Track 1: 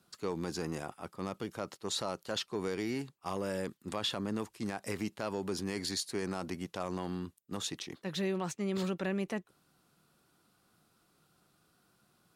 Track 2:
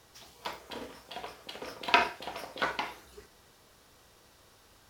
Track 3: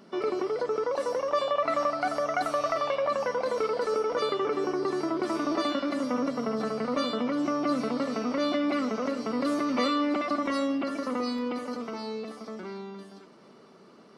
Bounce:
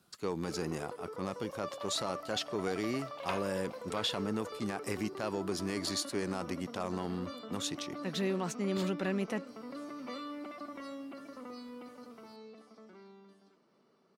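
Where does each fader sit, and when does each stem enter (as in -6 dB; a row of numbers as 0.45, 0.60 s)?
+0.5, -16.0, -16.0 dB; 0.00, 1.35, 0.30 s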